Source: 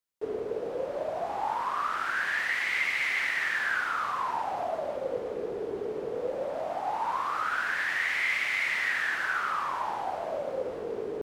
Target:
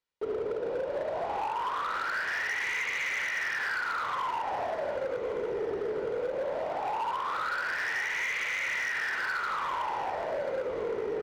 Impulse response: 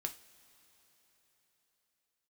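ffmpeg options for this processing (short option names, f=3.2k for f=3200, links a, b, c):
-filter_complex "[0:a]lowpass=4.3k,aecho=1:1:2.1:0.3,acompressor=threshold=-30dB:ratio=6,volume=30.5dB,asoftclip=hard,volume=-30.5dB,asplit=2[a][b];[b]aecho=0:1:1114|2228|3342|4456|5570:0.112|0.0651|0.0377|0.0219|0.0127[c];[a][c]amix=inputs=2:normalize=0,volume=3dB"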